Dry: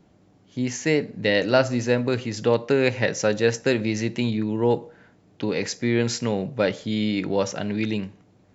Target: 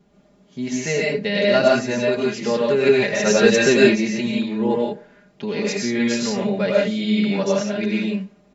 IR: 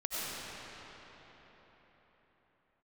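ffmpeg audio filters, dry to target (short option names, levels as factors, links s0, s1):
-filter_complex "[1:a]atrim=start_sample=2205,afade=t=out:st=0.22:d=0.01,atrim=end_sample=10143,asetrate=41013,aresample=44100[s0];[0:a][s0]afir=irnorm=-1:irlink=0,asplit=3[s1][s2][s3];[s1]afade=t=out:st=3.25:d=0.02[s4];[s2]acontrast=49,afade=t=in:st=3.25:d=0.02,afade=t=out:st=3.94:d=0.02[s5];[s3]afade=t=in:st=3.94:d=0.02[s6];[s4][s5][s6]amix=inputs=3:normalize=0,aecho=1:1:4.9:0.97,volume=0.841"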